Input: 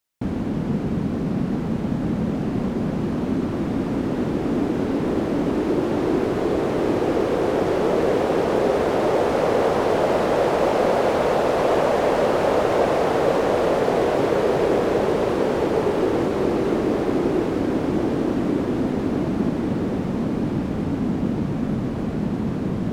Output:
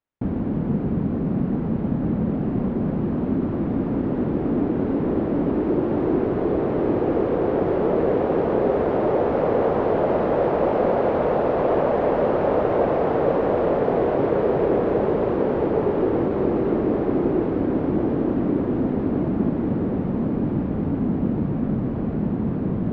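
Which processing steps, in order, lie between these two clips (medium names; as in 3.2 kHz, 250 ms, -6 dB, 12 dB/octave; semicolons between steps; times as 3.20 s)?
tape spacing loss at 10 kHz 43 dB; trim +1.5 dB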